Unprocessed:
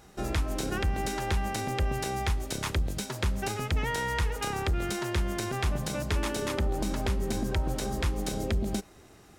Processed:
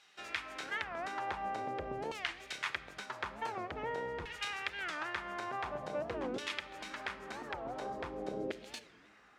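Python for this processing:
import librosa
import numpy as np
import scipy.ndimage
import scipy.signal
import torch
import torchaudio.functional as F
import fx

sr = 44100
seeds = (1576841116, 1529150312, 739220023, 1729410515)

y = fx.high_shelf(x, sr, hz=6000.0, db=-6.5)
y = fx.filter_lfo_bandpass(y, sr, shape='saw_down', hz=0.47, low_hz=400.0, high_hz=3200.0, q=1.3)
y = fx.tilt_shelf(y, sr, db=-3.0, hz=970.0)
y = fx.room_shoebox(y, sr, seeds[0], volume_m3=1300.0, walls='mixed', distance_m=0.38)
y = fx.record_warp(y, sr, rpm=45.0, depth_cents=250.0)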